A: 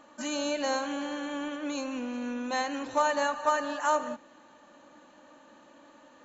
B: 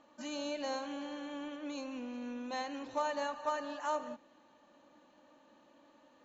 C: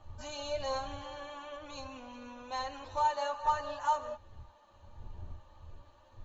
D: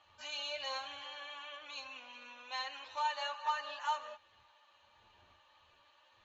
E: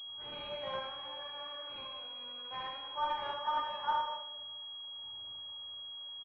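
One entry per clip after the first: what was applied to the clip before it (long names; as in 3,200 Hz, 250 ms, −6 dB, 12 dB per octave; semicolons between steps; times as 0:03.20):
low-pass filter 6,200 Hz 24 dB per octave; parametric band 1,500 Hz −4.5 dB 0.76 octaves; level −7.5 dB
wind on the microphone 99 Hz −52 dBFS; multi-voice chorus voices 6, 0.6 Hz, delay 10 ms, depth 1.6 ms; graphic EQ with 10 bands 125 Hz −5 dB, 250 Hz −7 dB, 1,000 Hz +6 dB, 2,000 Hz −3 dB, 4,000 Hz +3 dB; level +3 dB
resonant band-pass 2,700 Hz, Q 1.5; level +6.5 dB
ambience of single reflections 55 ms −4.5 dB, 79 ms −5 dB; convolution reverb RT60 1.0 s, pre-delay 6 ms, DRR 4 dB; switching amplifier with a slow clock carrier 3,300 Hz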